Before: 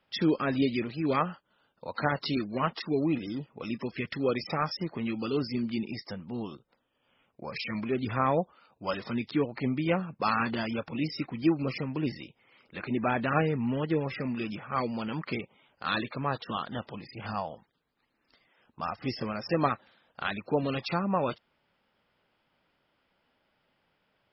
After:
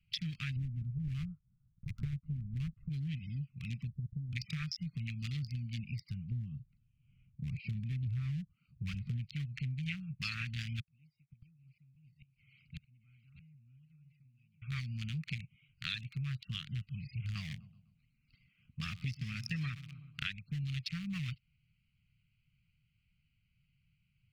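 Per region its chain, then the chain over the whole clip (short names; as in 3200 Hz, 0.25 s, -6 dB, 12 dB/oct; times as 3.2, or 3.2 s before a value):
0.56–2.89 block floating point 3-bit + LPF 1000 Hz 24 dB/oct + low shelf 190 Hz +6.5 dB
3.87–4.33 inverse Chebyshev low-pass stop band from 2500 Hz, stop band 80 dB + compressor 4:1, threshold -34 dBFS
6.31–9.26 tilt shelf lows +7.5 dB + bands offset in time lows, highs 40 ms, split 4200 Hz
10.8–14.62 flipped gate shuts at -31 dBFS, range -35 dB + echo 0.621 s -11 dB
17.35–20.32 bell 460 Hz +15 dB 2 oct + feedback echo 0.125 s, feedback 46%, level -17 dB
whole clip: Wiener smoothing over 25 samples; elliptic band-stop 140–2200 Hz, stop band 50 dB; compressor 6:1, threshold -47 dBFS; gain +11 dB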